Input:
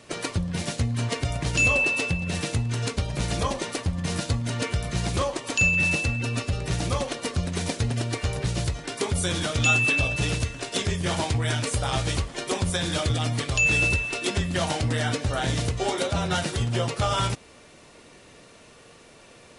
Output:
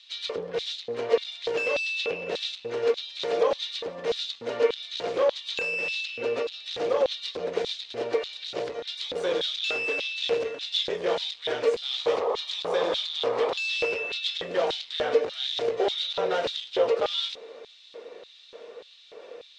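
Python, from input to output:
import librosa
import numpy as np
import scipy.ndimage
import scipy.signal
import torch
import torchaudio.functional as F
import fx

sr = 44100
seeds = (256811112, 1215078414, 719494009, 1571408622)

y = fx.peak_eq(x, sr, hz=87.0, db=-7.0, octaves=1.6, at=(2.85, 4.32))
y = fx.spec_paint(y, sr, seeds[0], shape='noise', start_s=11.91, length_s=1.95, low_hz=370.0, high_hz=1300.0, level_db=-33.0)
y = np.clip(10.0 ** (25.0 / 20.0) * y, -1.0, 1.0) / 10.0 ** (25.0 / 20.0)
y = fx.filter_lfo_highpass(y, sr, shape='square', hz=1.7, low_hz=470.0, high_hz=3700.0, q=7.1)
y = fx.air_absorb(y, sr, metres=190.0)
y = fx.echo_wet_highpass(y, sr, ms=687, feedback_pct=84, hz=5200.0, wet_db=-23.5)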